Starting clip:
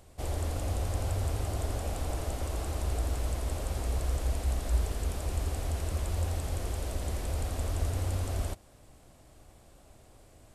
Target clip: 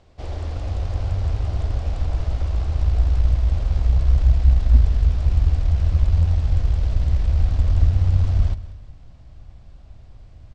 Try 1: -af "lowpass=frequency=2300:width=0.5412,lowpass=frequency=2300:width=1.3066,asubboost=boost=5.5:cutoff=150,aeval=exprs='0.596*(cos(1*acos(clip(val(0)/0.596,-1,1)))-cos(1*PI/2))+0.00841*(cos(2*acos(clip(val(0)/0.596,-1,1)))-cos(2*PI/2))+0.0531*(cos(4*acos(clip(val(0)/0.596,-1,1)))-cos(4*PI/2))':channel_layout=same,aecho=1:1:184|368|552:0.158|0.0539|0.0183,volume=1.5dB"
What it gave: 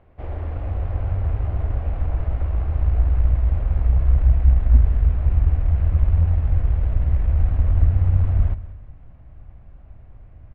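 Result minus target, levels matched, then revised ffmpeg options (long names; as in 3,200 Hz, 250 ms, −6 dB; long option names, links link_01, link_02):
4,000 Hz band −14.0 dB
-af "lowpass=frequency=5400:width=0.5412,lowpass=frequency=5400:width=1.3066,asubboost=boost=5.5:cutoff=150,aeval=exprs='0.596*(cos(1*acos(clip(val(0)/0.596,-1,1)))-cos(1*PI/2))+0.00841*(cos(2*acos(clip(val(0)/0.596,-1,1)))-cos(2*PI/2))+0.0531*(cos(4*acos(clip(val(0)/0.596,-1,1)))-cos(4*PI/2))':channel_layout=same,aecho=1:1:184|368|552:0.158|0.0539|0.0183,volume=1.5dB"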